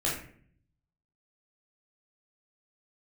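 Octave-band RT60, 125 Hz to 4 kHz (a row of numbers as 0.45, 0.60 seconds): 1.1, 0.85, 0.60, 0.50, 0.55, 0.35 seconds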